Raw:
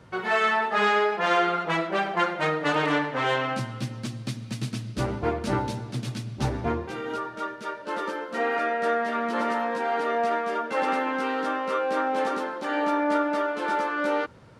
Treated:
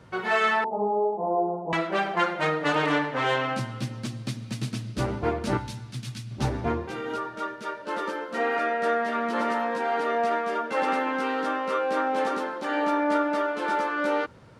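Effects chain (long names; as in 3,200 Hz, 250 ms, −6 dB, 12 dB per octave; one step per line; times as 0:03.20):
0:00.64–0:01.73: Butterworth low-pass 950 Hz 72 dB per octave
0:05.57–0:06.31: parametric band 480 Hz −14.5 dB 2.3 octaves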